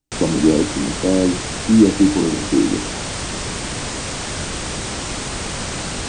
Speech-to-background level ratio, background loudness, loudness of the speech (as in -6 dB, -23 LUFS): 7.5 dB, -25.0 LUFS, -17.5 LUFS